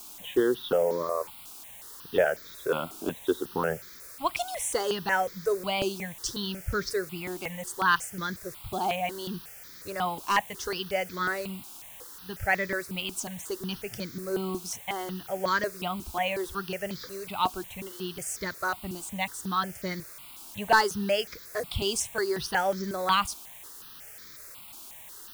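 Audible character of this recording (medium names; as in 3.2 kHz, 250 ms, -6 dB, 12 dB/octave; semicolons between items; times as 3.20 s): a quantiser's noise floor 8-bit, dither triangular; notches that jump at a steady rate 5.5 Hz 510–2800 Hz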